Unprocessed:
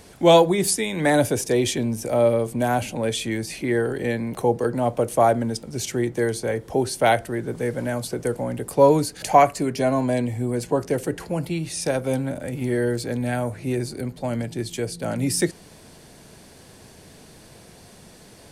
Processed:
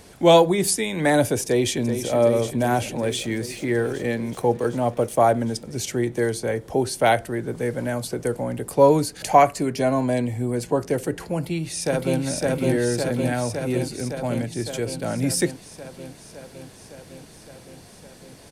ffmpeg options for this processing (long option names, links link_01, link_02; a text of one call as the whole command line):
ffmpeg -i in.wav -filter_complex "[0:a]asplit=2[link_01][link_02];[link_02]afade=type=in:start_time=1.44:duration=0.01,afade=type=out:start_time=2.12:duration=0.01,aecho=0:1:380|760|1140|1520|1900|2280|2660|3040|3420|3800|4180|4560:0.354813|0.283851|0.227081|0.181664|0.145332|0.116265|0.0930122|0.0744098|0.0595278|0.0476222|0.0380978|0.0304782[link_03];[link_01][link_03]amix=inputs=2:normalize=0,asettb=1/sr,asplit=3[link_04][link_05][link_06];[link_04]atrim=end=2.964[link_07];[link_05]atrim=start=2.96:end=5.18,asetpts=PTS-STARTPTS,afade=type=in:duration=0.004:curve=qsin,afade=type=out:start_time=2.216:duration=0.004:curve=qsin,aeval=exprs='sgn(val(0))*max(abs(val(0))-0.00398,0)':channel_layout=same[link_08];[link_06]atrim=start=5.176[link_09];[link_07][link_08]acrossfade=duration=0.004:curve1=hsin:curve2=qsin[link_10];[link_10][link_09]acrossfade=duration=0.004:curve1=qsin:curve2=hsin,asplit=2[link_11][link_12];[link_12]afade=type=in:start_time=11.36:duration=0.01,afade=type=out:start_time=12.2:duration=0.01,aecho=0:1:560|1120|1680|2240|2800|3360|3920|4480|5040|5600|6160|6720:0.891251|0.668438|0.501329|0.375996|0.281997|0.211498|0.158624|0.118968|0.0892257|0.0669193|0.0501895|0.0376421[link_13];[link_11][link_13]amix=inputs=2:normalize=0" out.wav